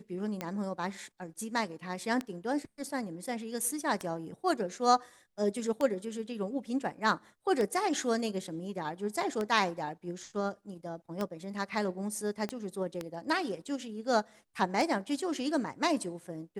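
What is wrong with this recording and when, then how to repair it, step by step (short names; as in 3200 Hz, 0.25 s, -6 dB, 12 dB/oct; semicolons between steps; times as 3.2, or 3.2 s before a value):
tick 33 1/3 rpm -19 dBFS
12.49 pop -22 dBFS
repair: de-click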